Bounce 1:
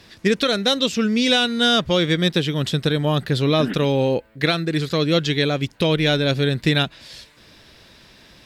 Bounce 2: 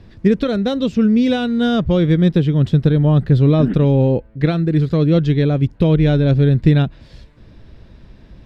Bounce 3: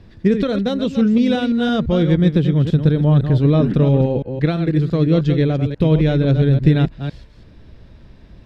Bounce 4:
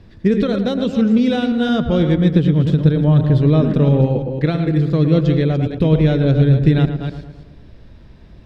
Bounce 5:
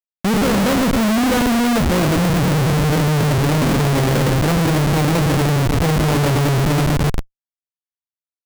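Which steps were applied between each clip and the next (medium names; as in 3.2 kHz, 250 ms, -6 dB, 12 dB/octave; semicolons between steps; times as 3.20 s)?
tilt EQ -4.5 dB/octave; trim -3 dB
chunks repeated in reverse 169 ms, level -8 dB; trim -1.5 dB
filtered feedback delay 112 ms, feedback 55%, low-pass 2.1 kHz, level -9 dB
Schmitt trigger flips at -24 dBFS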